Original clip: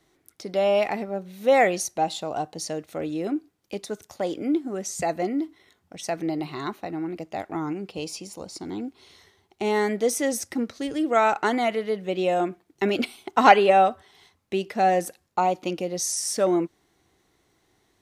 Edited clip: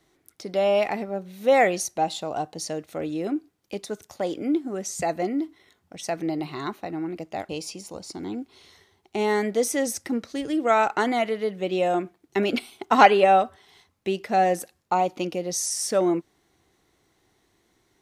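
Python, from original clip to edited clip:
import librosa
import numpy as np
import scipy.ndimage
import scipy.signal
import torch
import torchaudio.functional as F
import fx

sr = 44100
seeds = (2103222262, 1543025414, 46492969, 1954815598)

y = fx.edit(x, sr, fx.cut(start_s=7.49, length_s=0.46), tone=tone)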